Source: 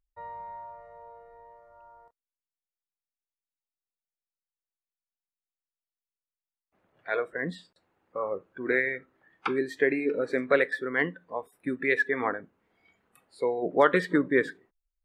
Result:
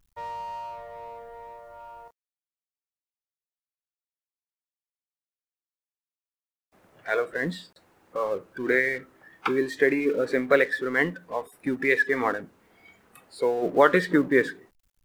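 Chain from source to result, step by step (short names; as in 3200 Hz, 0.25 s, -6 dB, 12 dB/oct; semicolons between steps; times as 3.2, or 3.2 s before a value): G.711 law mismatch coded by mu; gain +2.5 dB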